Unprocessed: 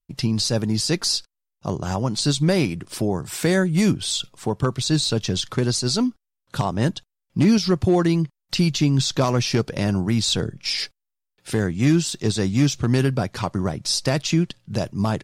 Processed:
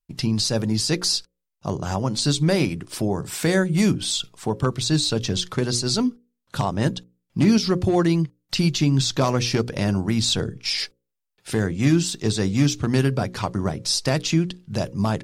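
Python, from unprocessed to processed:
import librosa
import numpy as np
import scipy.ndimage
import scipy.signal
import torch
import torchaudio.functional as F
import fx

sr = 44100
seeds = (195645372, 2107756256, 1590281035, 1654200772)

y = fx.hum_notches(x, sr, base_hz=60, count=9)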